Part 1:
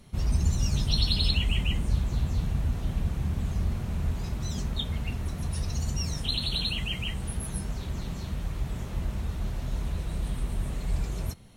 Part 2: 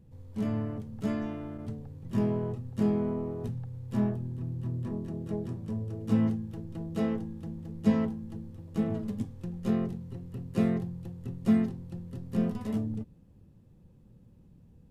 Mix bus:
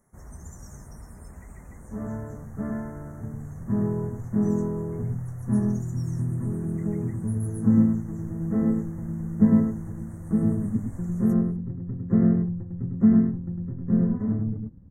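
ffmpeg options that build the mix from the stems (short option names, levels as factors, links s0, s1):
-filter_complex "[0:a]volume=0.422[s0];[1:a]lowpass=1900,asubboost=boost=7:cutoff=230,adelay=1550,volume=1.19,asplit=2[s1][s2];[s2]volume=0.631,aecho=0:1:103:1[s3];[s0][s1][s3]amix=inputs=3:normalize=0,asuperstop=centerf=3500:order=12:qfactor=0.83,lowshelf=f=230:g=-12"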